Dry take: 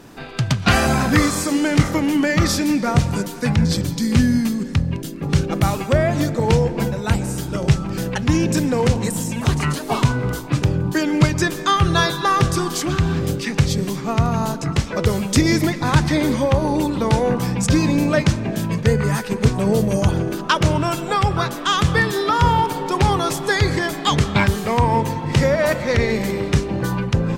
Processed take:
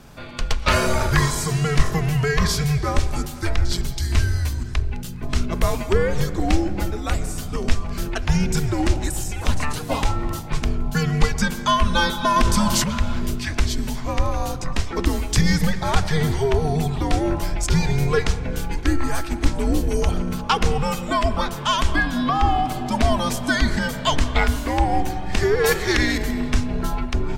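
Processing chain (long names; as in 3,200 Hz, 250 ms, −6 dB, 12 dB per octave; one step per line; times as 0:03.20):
0:25.64–0:26.18: high-shelf EQ 2,400 Hz +10.5 dB
frequency shifter −150 Hz
0:21.96–0:22.66: high-shelf EQ 5,100 Hz −10 dB
on a send at −15 dB: convolution reverb RT60 1.0 s, pre-delay 5 ms
0:12.36–0:12.84: on the sum: envelope flattener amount 50%
level −2 dB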